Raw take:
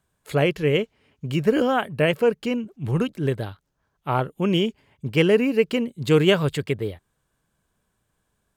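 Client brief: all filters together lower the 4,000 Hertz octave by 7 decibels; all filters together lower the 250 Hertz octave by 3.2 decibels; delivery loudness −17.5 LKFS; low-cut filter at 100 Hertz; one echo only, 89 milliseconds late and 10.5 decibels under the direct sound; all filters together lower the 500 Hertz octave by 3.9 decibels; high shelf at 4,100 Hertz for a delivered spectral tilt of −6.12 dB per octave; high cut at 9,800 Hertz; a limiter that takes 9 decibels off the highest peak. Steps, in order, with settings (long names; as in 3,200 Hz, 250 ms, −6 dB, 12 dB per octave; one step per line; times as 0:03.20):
high-pass filter 100 Hz
low-pass filter 9,800 Hz
parametric band 250 Hz −3 dB
parametric band 500 Hz −3.5 dB
parametric band 4,000 Hz −8 dB
high-shelf EQ 4,100 Hz −6 dB
brickwall limiter −17.5 dBFS
single-tap delay 89 ms −10.5 dB
level +11.5 dB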